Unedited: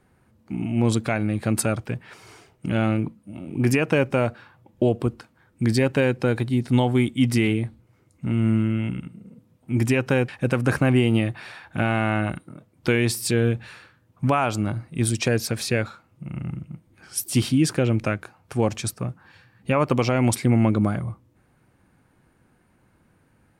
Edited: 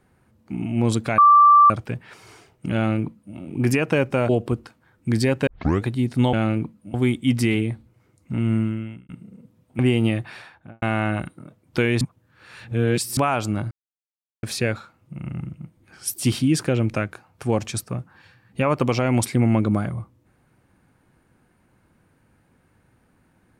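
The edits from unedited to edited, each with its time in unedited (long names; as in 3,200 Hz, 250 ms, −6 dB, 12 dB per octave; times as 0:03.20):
0:01.18–0:01.70: beep over 1,170 Hz −8.5 dBFS
0:02.75–0:03.36: duplicate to 0:06.87
0:04.29–0:04.83: remove
0:06.01: tape start 0.36 s
0:08.44–0:09.02: fade out
0:09.72–0:10.89: remove
0:11.43–0:11.92: fade out and dull
0:13.11–0:14.27: reverse
0:14.81–0:15.53: silence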